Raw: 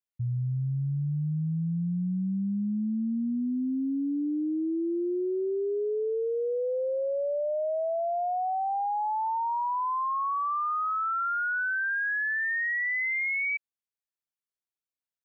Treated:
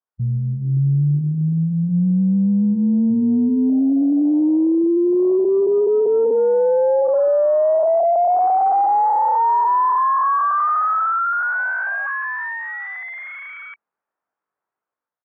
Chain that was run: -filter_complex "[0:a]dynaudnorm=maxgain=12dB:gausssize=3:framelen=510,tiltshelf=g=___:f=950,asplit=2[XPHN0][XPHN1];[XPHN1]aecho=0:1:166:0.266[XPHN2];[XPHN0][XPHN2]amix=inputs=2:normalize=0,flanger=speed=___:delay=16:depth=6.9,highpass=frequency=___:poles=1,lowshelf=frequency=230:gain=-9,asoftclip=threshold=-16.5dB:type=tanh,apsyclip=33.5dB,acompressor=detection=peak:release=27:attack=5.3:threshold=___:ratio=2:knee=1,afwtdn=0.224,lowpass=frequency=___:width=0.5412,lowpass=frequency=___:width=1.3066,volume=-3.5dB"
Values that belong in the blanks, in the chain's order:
-4.5, 0.39, 160, -21dB, 1300, 1300